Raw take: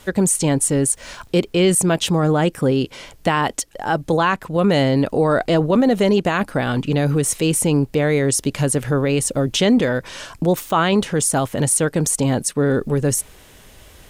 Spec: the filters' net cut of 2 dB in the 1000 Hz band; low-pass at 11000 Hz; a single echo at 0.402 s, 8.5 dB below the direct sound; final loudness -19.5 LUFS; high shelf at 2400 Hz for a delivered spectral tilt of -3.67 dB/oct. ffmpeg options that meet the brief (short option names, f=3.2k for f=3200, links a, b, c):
-af "lowpass=11k,equalizer=f=1k:t=o:g=-4,highshelf=f=2.4k:g=7,aecho=1:1:402:0.376,volume=-3dB"